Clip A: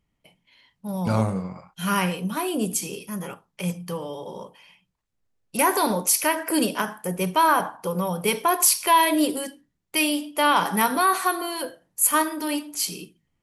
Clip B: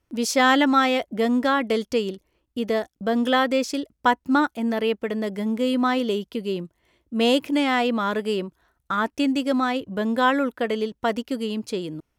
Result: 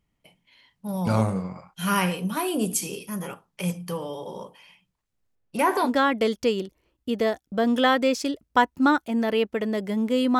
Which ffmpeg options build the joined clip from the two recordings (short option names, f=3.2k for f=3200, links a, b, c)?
-filter_complex "[0:a]asettb=1/sr,asplit=3[a][b][c];[a]atrim=end=5.354[d];[b]atrim=start=5.35:end=5.91,asetpts=PTS-STARTPTS,afade=t=in:d=0.004:c=qsin,afade=t=out:st=0.556:d=0.004:c=qsin,lowpass=f=2.1k:p=1[e];[c]atrim=start=5.906[f];[d][e]acrossfade=d=0.004:c1=hsin:c2=qsin[g];[g][f]acrossfade=d=0.004:c1=qsin:c2=hsin,apad=whole_dur=10.39,atrim=end=10.39,atrim=end=5.91,asetpts=PTS-STARTPTS[h];[1:a]atrim=start=1.32:end=5.88,asetpts=PTS-STARTPTS[i];[h][i]acrossfade=d=0.08:c1=tri:c2=tri"